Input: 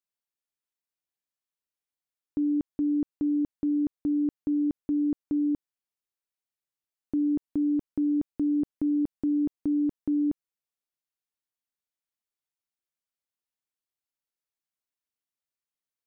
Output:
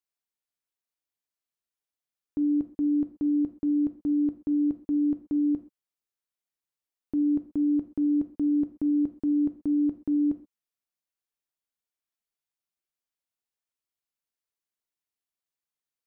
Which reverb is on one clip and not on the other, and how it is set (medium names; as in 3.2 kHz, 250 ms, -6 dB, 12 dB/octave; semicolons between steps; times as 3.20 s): gated-style reverb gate 150 ms falling, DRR 9 dB; trim -1.5 dB